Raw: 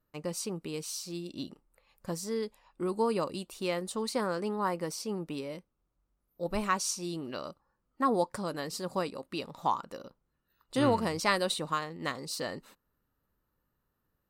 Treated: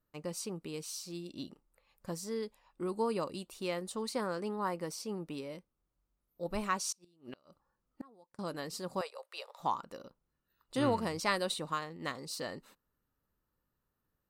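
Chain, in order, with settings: 6.92–8.39 s: inverted gate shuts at -27 dBFS, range -29 dB; 9.01–9.60 s: steep high-pass 480 Hz 48 dB/octave; trim -4 dB

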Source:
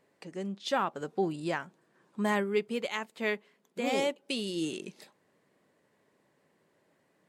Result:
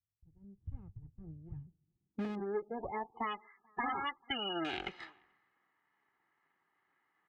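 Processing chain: comb filter that takes the minimum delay 0.99 ms; low-pass sweep 110 Hz -> 1.4 kHz, 1.53–3.50 s; one-sided clip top -30 dBFS, bottom -22.5 dBFS; peaking EQ 1.6 kHz +3 dB 0.47 oct; comb 2.4 ms, depth 46%; echo from a far wall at 75 m, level -28 dB; 2.35–4.65 s: loudest bins only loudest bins 32; frequency weighting D; compression 16:1, threshold -40 dBFS, peak gain reduction 16 dB; three bands expanded up and down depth 70%; trim +5 dB

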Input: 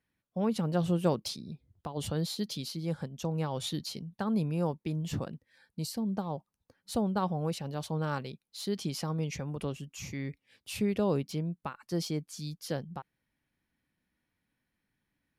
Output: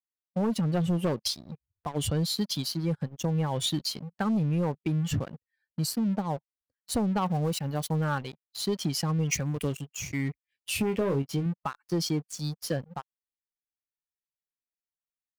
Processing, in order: expander on every frequency bin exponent 1.5; waveshaping leveller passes 3; 7.26–8.04 s: treble shelf 9.9 kHz +11 dB; 10.70–11.46 s: doubling 22 ms -7.5 dB; compression, threshold -24 dBFS, peak gain reduction 6.5 dB; 9.31–9.81 s: treble shelf 4.9 kHz +11.5 dB

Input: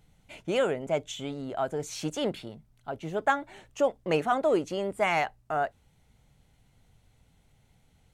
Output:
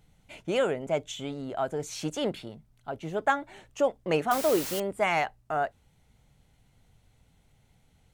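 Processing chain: 4.31–4.80 s: word length cut 6-bit, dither triangular

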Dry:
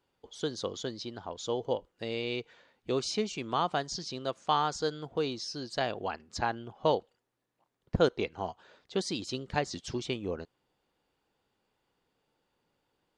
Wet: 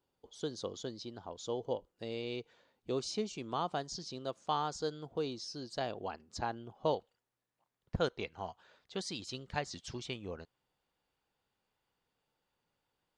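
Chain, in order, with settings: peaking EQ 2 kHz -5.5 dB 1.5 oct, from 6.94 s 330 Hz; trim -4.5 dB

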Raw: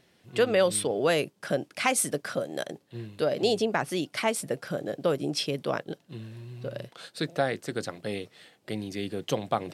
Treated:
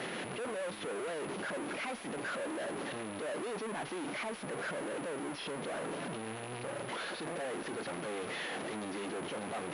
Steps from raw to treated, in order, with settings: one-bit comparator; three-band isolator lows -22 dB, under 180 Hz, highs -12 dB, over 3.2 kHz; peak limiter -26 dBFS, peak gain reduction 4 dB; class-D stage that switches slowly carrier 10 kHz; trim -4.5 dB

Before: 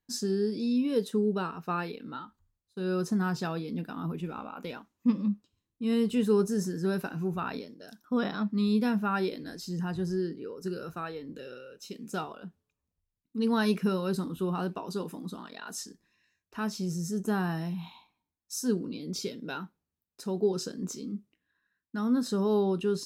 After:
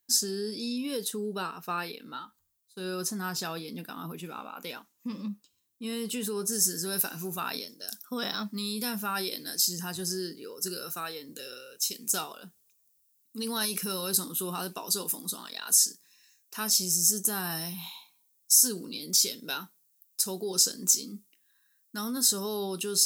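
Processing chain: tone controls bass +3 dB, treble +2 dB, from 6.52 s treble +11 dB; peak limiter -21 dBFS, peak gain reduction 9.5 dB; RIAA curve recording

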